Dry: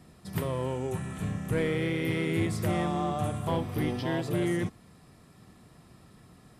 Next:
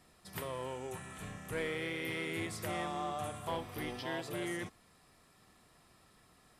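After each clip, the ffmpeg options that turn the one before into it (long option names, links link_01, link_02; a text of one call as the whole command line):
ffmpeg -i in.wav -af "equalizer=frequency=140:width=0.39:gain=-13,volume=-3dB" out.wav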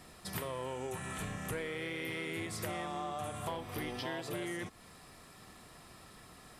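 ffmpeg -i in.wav -af "acompressor=threshold=-46dB:ratio=6,volume=9.5dB" out.wav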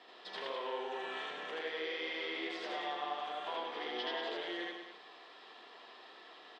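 ffmpeg -i in.wav -af "asoftclip=type=hard:threshold=-36dB,highpass=frequency=390:width=0.5412,highpass=frequency=390:width=1.3066,equalizer=frequency=580:width_type=q:width=4:gain=-5,equalizer=frequency=1300:width_type=q:width=4:gain=-6,equalizer=frequency=2300:width_type=q:width=4:gain=-5,equalizer=frequency=3300:width_type=q:width=4:gain=5,lowpass=frequency=3900:width=0.5412,lowpass=frequency=3900:width=1.3066,aecho=1:1:81.63|183.7|282.8:1|0.501|0.316,volume=1.5dB" out.wav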